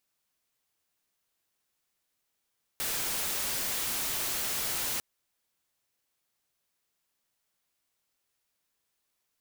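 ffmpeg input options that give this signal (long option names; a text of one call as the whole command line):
ffmpeg -f lavfi -i "anoisesrc=color=white:amplitude=0.0435:duration=2.2:sample_rate=44100:seed=1" out.wav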